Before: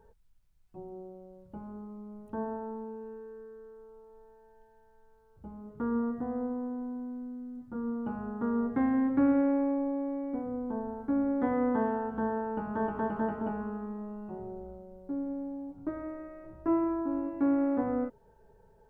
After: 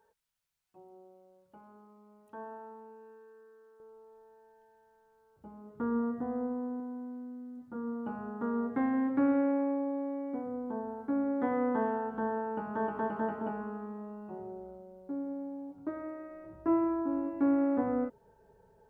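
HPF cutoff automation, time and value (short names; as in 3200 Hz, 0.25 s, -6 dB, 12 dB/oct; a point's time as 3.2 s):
HPF 6 dB/oct
1300 Hz
from 3.8 s 310 Hz
from 5.79 s 120 Hz
from 6.8 s 250 Hz
from 16.31 s 85 Hz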